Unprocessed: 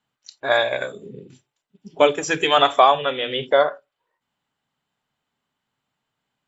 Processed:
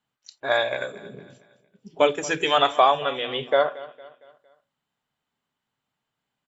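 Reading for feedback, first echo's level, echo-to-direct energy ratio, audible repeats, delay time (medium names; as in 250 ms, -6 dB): 44%, -18.5 dB, -17.5 dB, 3, 229 ms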